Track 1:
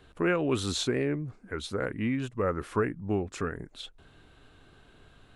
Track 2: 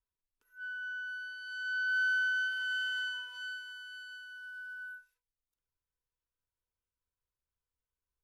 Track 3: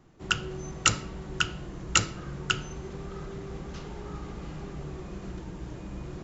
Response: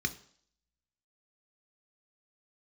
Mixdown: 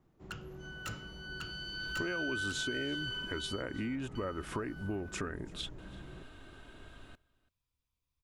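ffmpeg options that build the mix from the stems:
-filter_complex "[0:a]bandreject=f=4.2k:w=14,aecho=1:1:3.2:0.33,acompressor=threshold=-36dB:ratio=2.5,adelay=1800,volume=3dB,asplit=2[a][b];[b]volume=-23dB[c];[1:a]volume=2.5dB,asplit=3[d][e][f];[d]atrim=end=3.62,asetpts=PTS-STARTPTS,afade=t=out:st=3.616:d=0.004:c=hsin[g];[e]atrim=start=3.62:end=4.15,asetpts=PTS-STARTPTS,volume=0[h];[f]atrim=start=4.15,asetpts=PTS-STARTPTS,afade=t=in:d=0.004:c=hsin[i];[g][h][i]concat=n=3:v=0:a=1,asplit=3[j][k][l];[k]volume=-6.5dB[m];[l]volume=-10.5dB[n];[2:a]highshelf=f=2.4k:g=-9.5,volume=25.5dB,asoftclip=hard,volume=-25.5dB,volume=-10.5dB[o];[3:a]atrim=start_sample=2205[p];[m][p]afir=irnorm=-1:irlink=0[q];[c][n]amix=inputs=2:normalize=0,aecho=0:1:336:1[r];[a][j][o][q][r]amix=inputs=5:normalize=0,acompressor=threshold=-35dB:ratio=2.5"

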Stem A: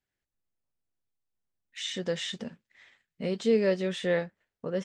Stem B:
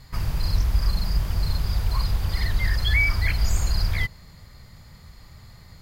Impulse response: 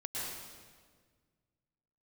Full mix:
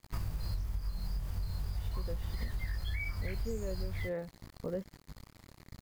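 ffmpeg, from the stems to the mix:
-filter_complex "[0:a]lowpass=f=1.2k:p=1,acrusher=bits=9:mix=0:aa=0.000001,volume=-1.5dB[a];[1:a]flanger=delay=18.5:depth=4.6:speed=0.42,acrusher=bits=6:mix=0:aa=0.5,volume=0dB[b];[a][b]amix=inputs=2:normalize=0,equalizer=f=3.3k:w=0.45:g=-5,acompressor=threshold=-32dB:ratio=12"

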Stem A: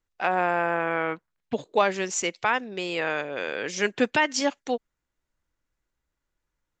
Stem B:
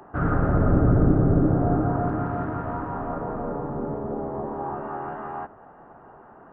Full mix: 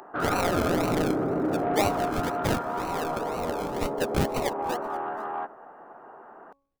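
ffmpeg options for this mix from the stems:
-filter_complex "[0:a]equalizer=f=270:t=o:w=1.2:g=-14,acrusher=samples=37:mix=1:aa=0.000001:lfo=1:lforange=22.2:lforate=2,volume=-2dB,asplit=2[a][b];[b]volume=-22.5dB[c];[1:a]highpass=330,acompressor=mode=upward:threshold=-54dB:ratio=2.5,asoftclip=type=tanh:threshold=-22dB,volume=2dB[d];[c]aecho=0:1:479:1[e];[a][d][e]amix=inputs=3:normalize=0,bandreject=f=277.7:t=h:w=4,bandreject=f=555.4:t=h:w=4,bandreject=f=833.1:t=h:w=4,bandreject=f=1.1108k:t=h:w=4"

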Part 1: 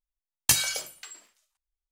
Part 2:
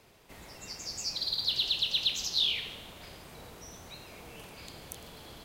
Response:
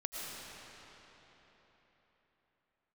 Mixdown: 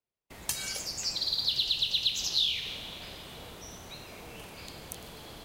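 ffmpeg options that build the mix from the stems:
-filter_complex "[0:a]acompressor=threshold=-27dB:ratio=4,volume=-3.5dB[a];[1:a]volume=0.5dB,asplit=2[b][c];[c]volume=-11dB[d];[2:a]atrim=start_sample=2205[e];[d][e]afir=irnorm=-1:irlink=0[f];[a][b][f]amix=inputs=3:normalize=0,agate=range=-37dB:threshold=-51dB:ratio=16:detection=peak,acrossover=split=180|3000[g][h][i];[h]acompressor=threshold=-39dB:ratio=6[j];[g][j][i]amix=inputs=3:normalize=0"

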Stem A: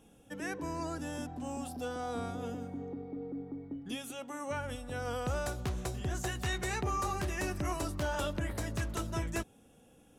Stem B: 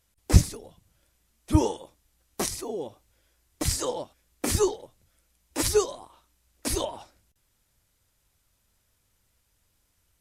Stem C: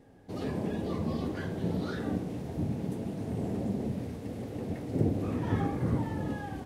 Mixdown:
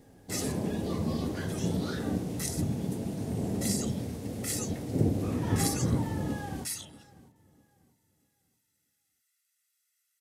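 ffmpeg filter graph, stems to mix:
-filter_complex "[1:a]highpass=f=1.8k:t=q:w=2.6,aecho=1:1:1.5:0.91,volume=-16dB[a];[2:a]volume=0dB,asplit=2[b][c];[c]volume=-20.5dB,aecho=0:1:642|1284|1926|2568:1|0.28|0.0784|0.022[d];[a][b][d]amix=inputs=3:normalize=0,bass=f=250:g=2,treble=f=4k:g=10"

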